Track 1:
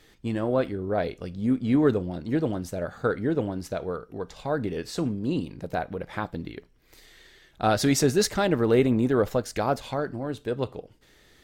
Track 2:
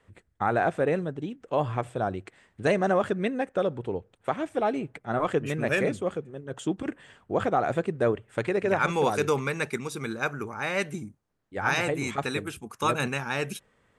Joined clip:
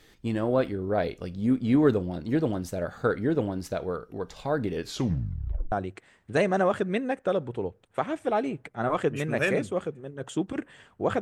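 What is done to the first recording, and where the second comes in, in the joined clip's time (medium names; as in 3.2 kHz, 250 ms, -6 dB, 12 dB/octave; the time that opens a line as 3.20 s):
track 1
4.82 s: tape stop 0.90 s
5.72 s: go over to track 2 from 2.02 s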